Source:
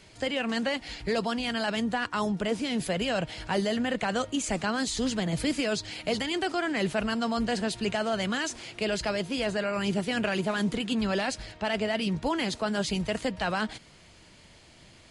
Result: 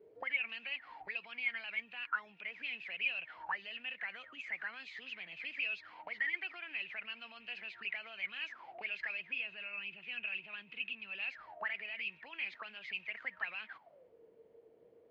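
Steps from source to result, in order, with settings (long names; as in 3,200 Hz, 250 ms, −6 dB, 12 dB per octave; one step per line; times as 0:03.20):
0:09.20–0:11.22: bass and treble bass +7 dB, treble −7 dB
brickwall limiter −23 dBFS, peak gain reduction 8 dB
envelope filter 400–2,600 Hz, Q 22, up, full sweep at −27.5 dBFS
high-frequency loss of the air 220 metres
level +14 dB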